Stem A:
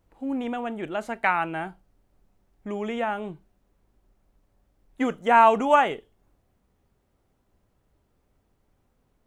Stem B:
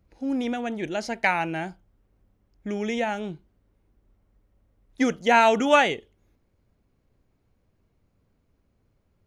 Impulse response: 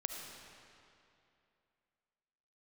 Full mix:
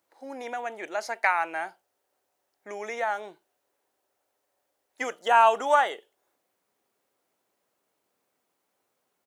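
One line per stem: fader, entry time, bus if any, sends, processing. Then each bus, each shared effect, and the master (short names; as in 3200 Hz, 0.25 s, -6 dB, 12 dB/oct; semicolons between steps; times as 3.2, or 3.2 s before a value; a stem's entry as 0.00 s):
-4.0 dB, 0.00 s, no send, high shelf 4300 Hz +9 dB
-4.5 dB, 0.3 ms, polarity flipped, no send, compressor, threshold -22 dBFS, peak gain reduction 9.5 dB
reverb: off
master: HPF 480 Hz 12 dB/oct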